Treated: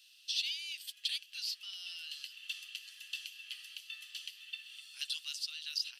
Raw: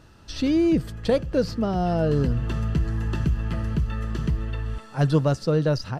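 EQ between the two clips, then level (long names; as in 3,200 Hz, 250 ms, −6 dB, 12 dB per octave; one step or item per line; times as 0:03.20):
Chebyshev high-pass filter 2,900 Hz, order 4
parametric band 6,800 Hz −9 dB 0.88 octaves
+7.0 dB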